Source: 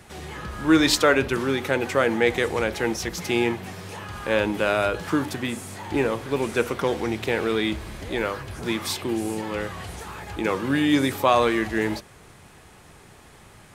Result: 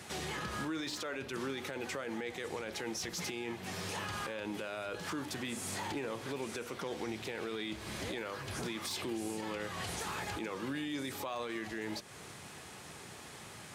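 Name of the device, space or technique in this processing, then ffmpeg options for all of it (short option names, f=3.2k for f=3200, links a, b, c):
broadcast voice chain: -af "highpass=110,deesser=0.55,acompressor=threshold=-35dB:ratio=4,equalizer=f=5.4k:t=o:w=2.1:g=5.5,alimiter=level_in=4.5dB:limit=-24dB:level=0:latency=1:release=14,volume=-4.5dB,volume=-1dB"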